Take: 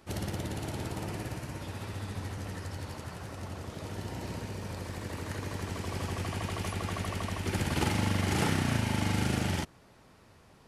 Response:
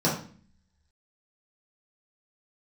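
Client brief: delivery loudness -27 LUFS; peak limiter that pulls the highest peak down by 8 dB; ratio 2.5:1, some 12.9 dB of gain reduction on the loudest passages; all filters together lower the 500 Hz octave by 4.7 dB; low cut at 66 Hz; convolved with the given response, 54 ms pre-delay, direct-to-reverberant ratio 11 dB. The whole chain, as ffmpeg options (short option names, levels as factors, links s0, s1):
-filter_complex "[0:a]highpass=66,equalizer=f=500:t=o:g=-6.5,acompressor=threshold=0.00501:ratio=2.5,alimiter=level_in=4.73:limit=0.0631:level=0:latency=1,volume=0.211,asplit=2[s0][s1];[1:a]atrim=start_sample=2205,adelay=54[s2];[s1][s2]afir=irnorm=-1:irlink=0,volume=0.0596[s3];[s0][s3]amix=inputs=2:normalize=0,volume=9.44"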